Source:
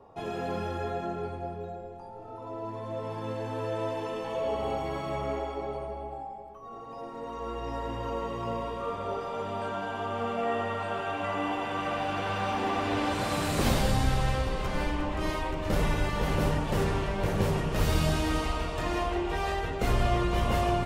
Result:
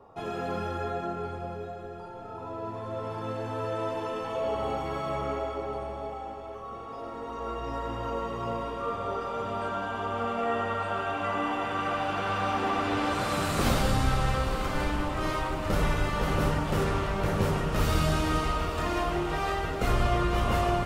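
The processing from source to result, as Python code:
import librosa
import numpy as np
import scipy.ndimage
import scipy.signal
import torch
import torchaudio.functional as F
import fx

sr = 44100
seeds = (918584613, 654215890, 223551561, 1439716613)

p1 = fx.peak_eq(x, sr, hz=1300.0, db=7.0, octaves=0.3)
y = p1 + fx.echo_diffused(p1, sr, ms=967, feedback_pct=64, wet_db=-12.5, dry=0)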